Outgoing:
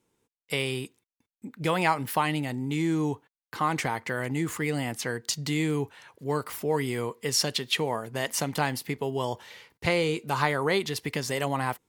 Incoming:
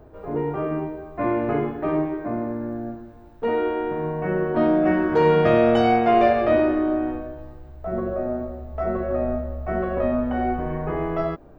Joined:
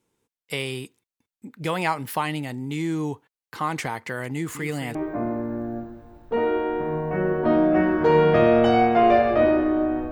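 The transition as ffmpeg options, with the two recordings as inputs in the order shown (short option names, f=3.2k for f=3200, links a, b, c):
-filter_complex "[0:a]asettb=1/sr,asplit=3[a][b][c];[a]atrim=end=4.334[d];[b]atrim=start=4.33:end=4.95,asetpts=PTS-STARTPTS,afade=t=in:d=0.004:c=qsin,afade=t=out:st=0.616:d=0.004:c=qsin,aecho=1:1:217:0.316,atrim=end_sample=27342[e];[c]atrim=start=4.946[f];[d][e]acrossfade=d=0.004:c1=hsin:c2=qsin[g];[g][f]acrossfade=d=0.004:c1=qsin:c2=hsin,apad=whole_dur=10.11,atrim=end=10.11,atrim=end=4.952[h];[1:a]atrim=start=2.058:end=7.22[i];[h][i]acrossfade=d=0.004:c1=hsin:c2=hsin"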